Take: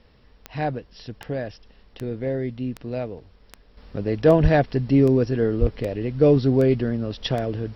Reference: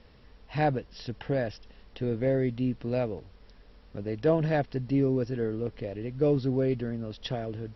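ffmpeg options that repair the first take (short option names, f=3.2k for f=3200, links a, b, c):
-filter_complex "[0:a]adeclick=t=4,asplit=3[a][b][c];[a]afade=t=out:st=4.42:d=0.02[d];[b]highpass=f=140:w=0.5412,highpass=f=140:w=1.3066,afade=t=in:st=4.42:d=0.02,afade=t=out:st=4.54:d=0.02[e];[c]afade=t=in:st=4.54:d=0.02[f];[d][e][f]amix=inputs=3:normalize=0,asplit=3[g][h][i];[g]afade=t=out:st=5.6:d=0.02[j];[h]highpass=f=140:w=0.5412,highpass=f=140:w=1.3066,afade=t=in:st=5.6:d=0.02,afade=t=out:st=5.72:d=0.02[k];[i]afade=t=in:st=5.72:d=0.02[l];[j][k][l]amix=inputs=3:normalize=0,asetnsamples=n=441:p=0,asendcmd='3.77 volume volume -8.5dB',volume=0dB"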